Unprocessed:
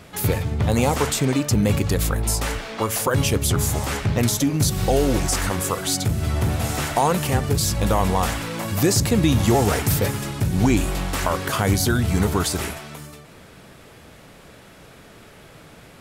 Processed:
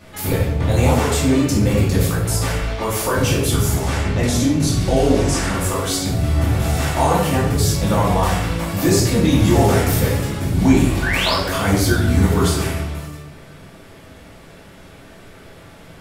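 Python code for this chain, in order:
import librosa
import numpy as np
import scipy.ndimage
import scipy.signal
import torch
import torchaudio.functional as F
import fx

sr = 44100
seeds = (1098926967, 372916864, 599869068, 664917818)

y = fx.lowpass(x, sr, hz=10000.0, slope=12, at=(3.75, 5.54))
y = fx.spec_paint(y, sr, seeds[0], shape='rise', start_s=11.02, length_s=0.32, low_hz=1400.0, high_hz=5500.0, level_db=-23.0)
y = fx.room_shoebox(y, sr, seeds[1], volume_m3=250.0, walls='mixed', distance_m=2.5)
y = y * 10.0 ** (-5.5 / 20.0)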